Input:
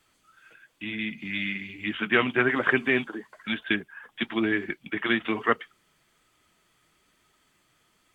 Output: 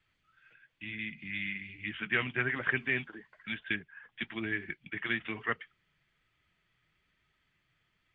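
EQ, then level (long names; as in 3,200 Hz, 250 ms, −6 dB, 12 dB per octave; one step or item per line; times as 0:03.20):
low-pass filter 2,400 Hz 12 dB per octave
flat-topped bell 530 Hz −10.5 dB 3 octaves
−2.5 dB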